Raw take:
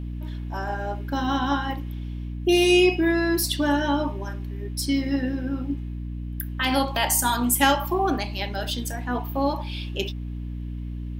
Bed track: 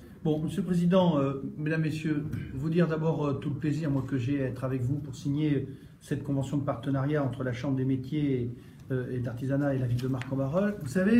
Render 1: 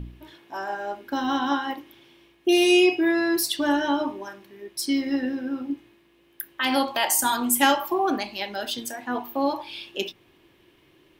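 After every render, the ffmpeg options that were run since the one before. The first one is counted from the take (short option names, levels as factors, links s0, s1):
-af "bandreject=f=60:t=h:w=4,bandreject=f=120:t=h:w=4,bandreject=f=180:t=h:w=4,bandreject=f=240:t=h:w=4,bandreject=f=300:t=h:w=4"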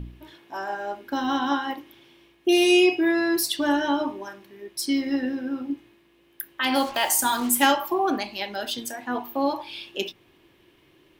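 -filter_complex "[0:a]asettb=1/sr,asplit=3[s0][s1][s2];[s0]atrim=end=6.754[s3];[s1]atrim=start=6.75:end=7.66,asetpts=PTS-STARTPTS,afade=t=in:d=0.004:c=qsin,afade=t=out:st=0.906:d=0.004:c=qsin,acrusher=bits=5:mix=0:aa=0.5[s4];[s2]atrim=start=7.656[s5];[s3][s4]acrossfade=d=0.004:c1=hsin:c2=qsin[s6];[s6][s5]acrossfade=d=0.004:c1=qsin:c2=hsin"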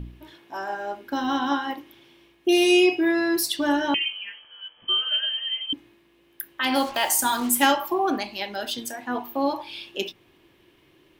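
-filter_complex "[0:a]asettb=1/sr,asplit=3[s0][s1][s2];[s0]atrim=end=3.944[s3];[s1]atrim=start=3.94:end=5.73,asetpts=PTS-STARTPTS,afade=t=in:d=0.004:c=qsin,afade=t=out:st=1.786:d=0.004:c=qsin,lowpass=f=2900:t=q:w=0.5098,lowpass=f=2900:t=q:w=0.6013,lowpass=f=2900:t=q:w=0.9,lowpass=f=2900:t=q:w=2.563,afreqshift=-3400[s4];[s2]atrim=start=5.726[s5];[s3][s4]acrossfade=d=0.004:c1=hsin:c2=qsin[s6];[s6][s5]acrossfade=d=0.004:c1=qsin:c2=hsin"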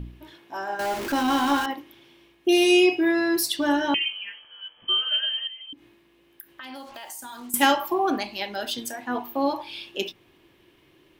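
-filter_complex "[0:a]asettb=1/sr,asplit=3[s0][s1][s2];[s0]atrim=end=0.794[s3];[s1]atrim=start=0.79:end=1.66,asetpts=PTS-STARTPTS,afade=t=in:d=0.004:c=qsin,afade=t=out:st=0.866:d=0.004:c=qsin,aeval=exprs='val(0)+0.5*0.0473*sgn(val(0))':c=same[s4];[s2]atrim=start=1.656[s5];[s3][s4]acrossfade=d=0.004:c1=hsin:c2=qsin[s6];[s6][s5]acrossfade=d=0.004:c1=qsin:c2=hsin,asettb=1/sr,asplit=3[s7][s8][s9];[s7]atrim=end=5.474[s10];[s8]atrim=start=5.47:end=7.54,asetpts=PTS-STARTPTS,afade=t=in:d=0.004:c=qsin,afade=t=out:st=2.066:d=0.004:c=qsin,acompressor=threshold=0.00794:ratio=3:attack=3.2:release=140:knee=1:detection=peak[s11];[s9]atrim=start=7.536[s12];[s10][s11]acrossfade=d=0.004:c1=hsin:c2=qsin[s13];[s13][s12]acrossfade=d=0.004:c1=qsin:c2=hsin"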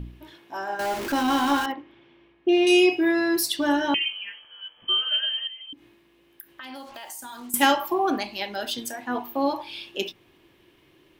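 -filter_complex "[0:a]asettb=1/sr,asplit=3[s0][s1][s2];[s0]atrim=end=1.724[s3];[s1]atrim=start=1.72:end=2.67,asetpts=PTS-STARTPTS,afade=t=in:d=0.004:c=qsin,afade=t=out:st=0.946:d=0.004:c=qsin,lowpass=2300[s4];[s2]atrim=start=2.666[s5];[s3][s4]acrossfade=d=0.004:c1=hsin:c2=qsin[s6];[s6][s5]acrossfade=d=0.004:c1=qsin:c2=hsin"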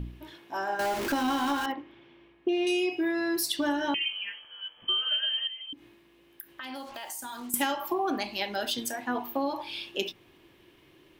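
-af "acompressor=threshold=0.0562:ratio=6"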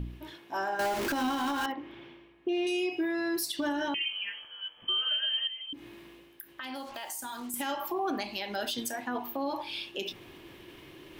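-af "alimiter=limit=0.0708:level=0:latency=1:release=91,areverse,acompressor=mode=upward:threshold=0.01:ratio=2.5,areverse"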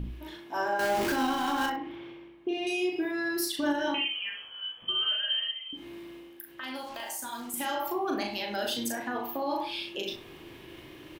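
-filter_complex "[0:a]asplit=2[s0][s1];[s1]adelay=38,volume=0.631[s2];[s0][s2]amix=inputs=2:normalize=0,asplit=2[s3][s4];[s4]adelay=64,lowpass=f=1300:p=1,volume=0.531,asplit=2[s5][s6];[s6]adelay=64,lowpass=f=1300:p=1,volume=0.27,asplit=2[s7][s8];[s8]adelay=64,lowpass=f=1300:p=1,volume=0.27,asplit=2[s9][s10];[s10]adelay=64,lowpass=f=1300:p=1,volume=0.27[s11];[s3][s5][s7][s9][s11]amix=inputs=5:normalize=0"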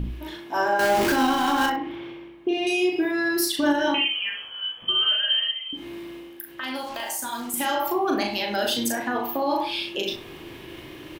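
-af "volume=2.24"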